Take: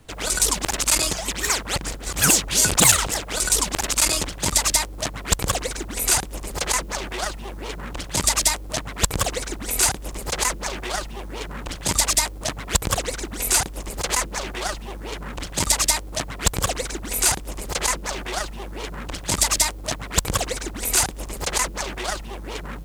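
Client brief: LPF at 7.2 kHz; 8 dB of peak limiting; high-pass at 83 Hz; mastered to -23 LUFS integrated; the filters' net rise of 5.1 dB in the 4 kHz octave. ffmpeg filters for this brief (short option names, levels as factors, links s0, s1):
-af "highpass=83,lowpass=7200,equalizer=f=4000:t=o:g=7,alimiter=limit=0.398:level=0:latency=1"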